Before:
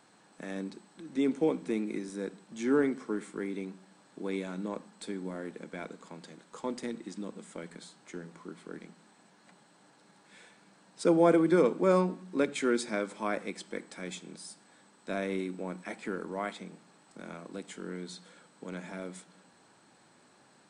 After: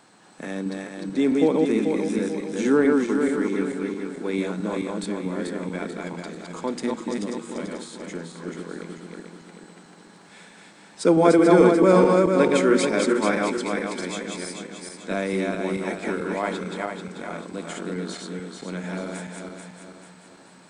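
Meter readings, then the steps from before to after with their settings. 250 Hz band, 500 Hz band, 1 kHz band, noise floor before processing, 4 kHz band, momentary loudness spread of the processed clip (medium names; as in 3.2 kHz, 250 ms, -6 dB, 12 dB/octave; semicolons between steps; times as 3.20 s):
+10.0 dB, +10.0 dB, +10.0 dB, -62 dBFS, +10.0 dB, 19 LU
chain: backward echo that repeats 219 ms, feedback 66%, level -2 dB; trim +7 dB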